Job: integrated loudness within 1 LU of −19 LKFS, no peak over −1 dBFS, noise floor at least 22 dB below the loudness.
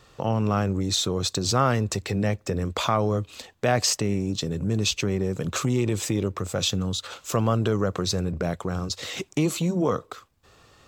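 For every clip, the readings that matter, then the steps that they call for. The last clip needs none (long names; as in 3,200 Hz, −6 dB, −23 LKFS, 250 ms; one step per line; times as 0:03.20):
integrated loudness −25.5 LKFS; sample peak −8.5 dBFS; target loudness −19.0 LKFS
→ level +6.5 dB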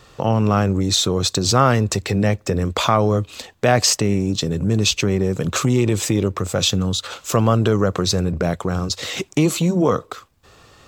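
integrated loudness −19.0 LKFS; sample peak −2.0 dBFS; background noise floor −51 dBFS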